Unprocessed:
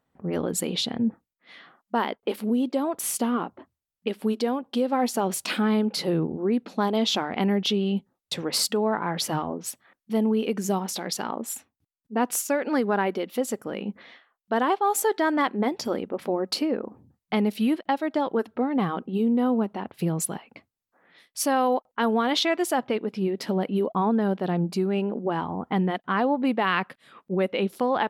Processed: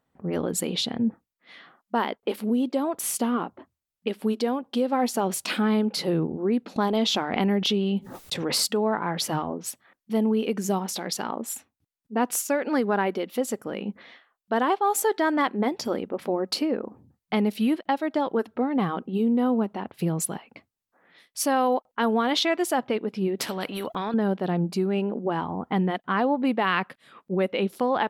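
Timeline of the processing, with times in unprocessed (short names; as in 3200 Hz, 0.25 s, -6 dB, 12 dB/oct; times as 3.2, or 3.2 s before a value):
6.76–8.69 backwards sustainer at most 59 dB/s
23.39–24.14 spectral compressor 2:1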